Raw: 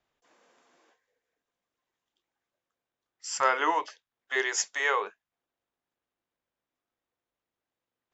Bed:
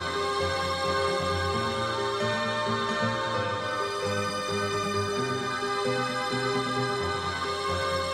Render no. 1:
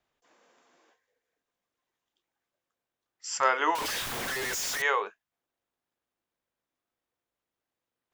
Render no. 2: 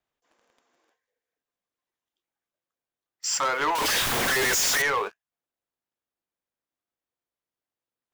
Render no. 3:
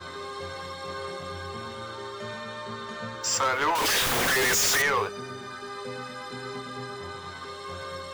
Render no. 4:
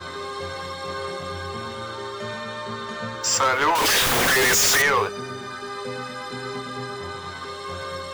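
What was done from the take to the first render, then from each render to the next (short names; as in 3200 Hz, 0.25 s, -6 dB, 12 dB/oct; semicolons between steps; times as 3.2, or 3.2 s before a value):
3.75–4.82 infinite clipping
compressor 2:1, threshold -34 dBFS, peak gain reduction 9 dB; sample leveller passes 3
add bed -9 dB
gain +5 dB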